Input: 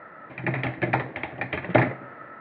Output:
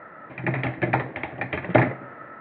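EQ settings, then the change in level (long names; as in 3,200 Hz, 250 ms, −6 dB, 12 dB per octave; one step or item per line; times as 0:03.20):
high-frequency loss of the air 150 metres
+2.0 dB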